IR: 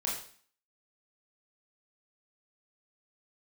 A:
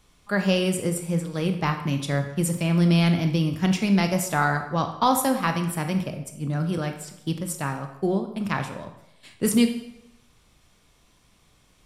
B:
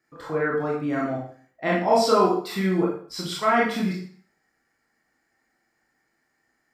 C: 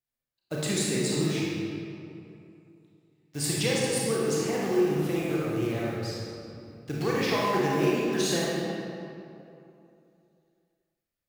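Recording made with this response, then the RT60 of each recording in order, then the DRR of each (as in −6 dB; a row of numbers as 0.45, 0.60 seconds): B; 0.85, 0.45, 2.8 seconds; 5.5, −4.5, −6.0 decibels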